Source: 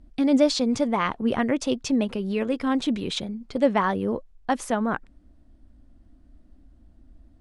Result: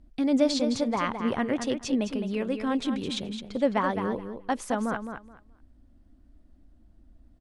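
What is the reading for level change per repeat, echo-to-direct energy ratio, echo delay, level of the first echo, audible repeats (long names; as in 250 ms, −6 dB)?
−14.5 dB, −8.0 dB, 213 ms, −8.0 dB, 2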